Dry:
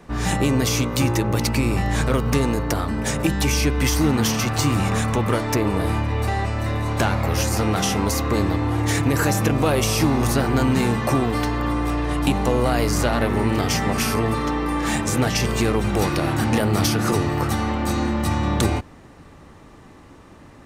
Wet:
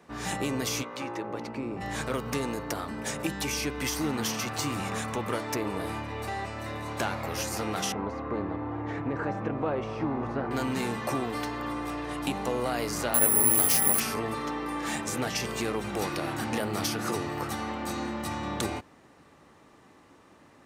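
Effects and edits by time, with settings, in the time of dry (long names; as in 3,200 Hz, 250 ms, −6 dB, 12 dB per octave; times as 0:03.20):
0:00.82–0:01.80: resonant band-pass 1,300 Hz → 290 Hz, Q 0.54
0:07.92–0:10.51: low-pass filter 1,400 Hz
0:13.14–0:14.00: bad sample-rate conversion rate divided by 4×, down none, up zero stuff
whole clip: high-pass filter 280 Hz 6 dB per octave; level −7.5 dB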